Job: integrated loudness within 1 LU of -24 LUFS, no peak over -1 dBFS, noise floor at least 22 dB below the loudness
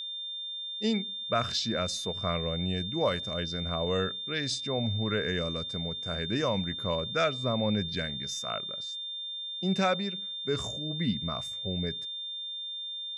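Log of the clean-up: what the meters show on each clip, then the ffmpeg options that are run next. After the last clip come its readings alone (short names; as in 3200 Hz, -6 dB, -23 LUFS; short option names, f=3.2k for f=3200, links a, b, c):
steady tone 3600 Hz; tone level -35 dBFS; loudness -31.0 LUFS; peak -15.0 dBFS; loudness target -24.0 LUFS
-> -af "bandreject=f=3.6k:w=30"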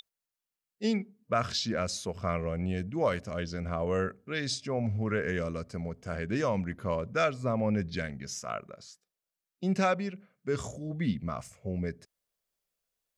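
steady tone none; loudness -32.5 LUFS; peak -15.0 dBFS; loudness target -24.0 LUFS
-> -af "volume=8.5dB"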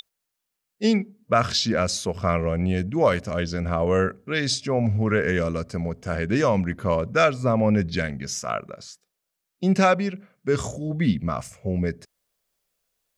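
loudness -24.0 LUFS; peak -6.5 dBFS; noise floor -82 dBFS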